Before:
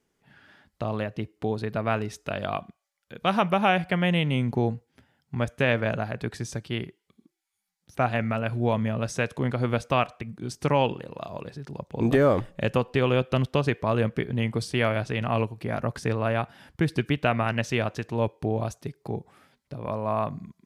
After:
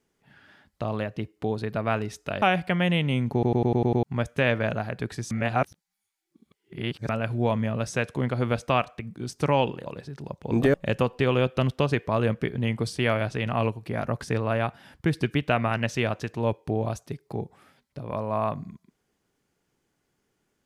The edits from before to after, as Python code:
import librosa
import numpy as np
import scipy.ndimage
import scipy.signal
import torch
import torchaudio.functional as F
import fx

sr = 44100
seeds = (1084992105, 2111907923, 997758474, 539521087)

y = fx.edit(x, sr, fx.cut(start_s=2.42, length_s=1.22),
    fx.stutter_over(start_s=4.55, slice_s=0.1, count=7),
    fx.reverse_span(start_s=6.53, length_s=1.78),
    fx.cut(start_s=11.08, length_s=0.27),
    fx.cut(start_s=12.23, length_s=0.26), tone=tone)